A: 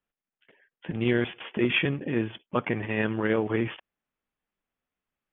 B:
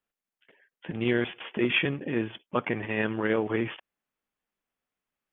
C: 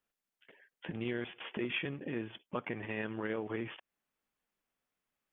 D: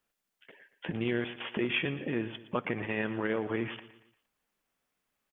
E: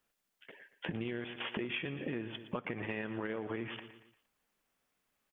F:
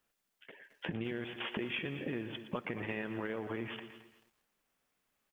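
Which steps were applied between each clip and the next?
bass shelf 160 Hz -6 dB
compression 2:1, threshold -42 dBFS, peak gain reduction 12 dB
feedback delay 116 ms, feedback 45%, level -15 dB; trim +5.5 dB
compression 10:1, threshold -35 dBFS, peak gain reduction 10 dB; trim +1 dB
bit-crushed delay 218 ms, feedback 35%, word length 10-bit, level -14 dB

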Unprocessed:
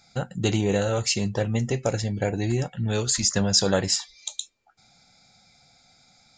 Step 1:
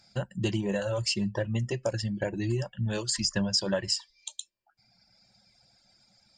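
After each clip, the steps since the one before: reverb removal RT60 1.4 s; rippled EQ curve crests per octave 1.3, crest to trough 10 dB; compression 2.5:1, threshold -22 dBFS, peak gain reduction 7.5 dB; trim -3.5 dB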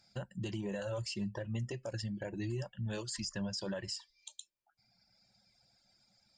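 peak limiter -23 dBFS, peak gain reduction 9 dB; trim -7 dB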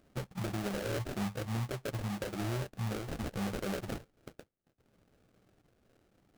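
sample-rate reducer 1 kHz, jitter 20%; trim +2.5 dB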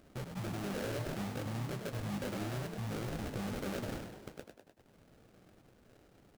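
peak limiter -39 dBFS, peak gain reduction 11.5 dB; frequency-shifting echo 100 ms, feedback 56%, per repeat +43 Hz, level -7 dB; trim +5 dB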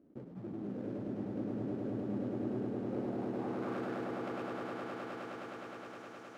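block-companded coder 3-bit; band-pass sweep 290 Hz -> 6 kHz, 2.42–5.25 s; echo with a slow build-up 104 ms, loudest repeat 8, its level -6 dB; trim +3 dB

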